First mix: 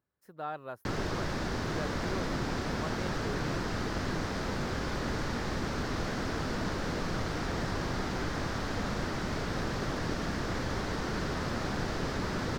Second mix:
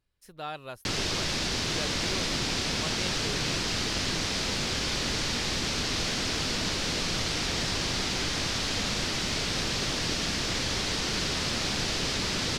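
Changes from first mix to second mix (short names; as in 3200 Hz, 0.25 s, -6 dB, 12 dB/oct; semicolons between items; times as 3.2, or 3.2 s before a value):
speech: remove Bessel high-pass 150 Hz; master: add band shelf 5200 Hz +14.5 dB 2.7 oct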